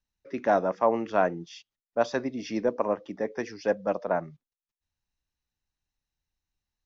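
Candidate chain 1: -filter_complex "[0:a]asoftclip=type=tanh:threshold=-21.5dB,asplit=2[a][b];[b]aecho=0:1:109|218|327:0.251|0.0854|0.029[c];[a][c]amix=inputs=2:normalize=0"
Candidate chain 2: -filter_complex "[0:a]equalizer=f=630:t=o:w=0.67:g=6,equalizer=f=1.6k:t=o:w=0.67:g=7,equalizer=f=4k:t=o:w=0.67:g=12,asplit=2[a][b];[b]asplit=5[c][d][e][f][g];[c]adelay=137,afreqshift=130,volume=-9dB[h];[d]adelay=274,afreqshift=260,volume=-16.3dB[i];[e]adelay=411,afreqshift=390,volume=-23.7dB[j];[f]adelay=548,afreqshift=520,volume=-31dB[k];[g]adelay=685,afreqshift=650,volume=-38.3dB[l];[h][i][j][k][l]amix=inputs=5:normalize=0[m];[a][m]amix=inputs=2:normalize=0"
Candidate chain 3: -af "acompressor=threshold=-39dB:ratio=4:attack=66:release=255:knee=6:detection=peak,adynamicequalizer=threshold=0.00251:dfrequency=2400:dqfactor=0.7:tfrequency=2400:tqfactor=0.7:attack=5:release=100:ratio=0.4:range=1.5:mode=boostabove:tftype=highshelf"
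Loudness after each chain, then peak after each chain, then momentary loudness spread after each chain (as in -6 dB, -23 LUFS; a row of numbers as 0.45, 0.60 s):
-31.5, -23.5, -38.5 LUFS; -20.0, -6.0, -17.5 dBFS; 10, 14, 6 LU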